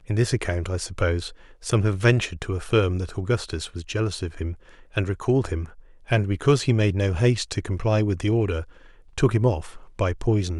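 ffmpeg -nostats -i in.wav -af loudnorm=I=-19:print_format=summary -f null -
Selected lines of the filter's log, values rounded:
Input Integrated:    -24.1 LUFS
Input True Peak:      -5.1 dBTP
Input LRA:             2.3 LU
Input Threshold:     -34.6 LUFS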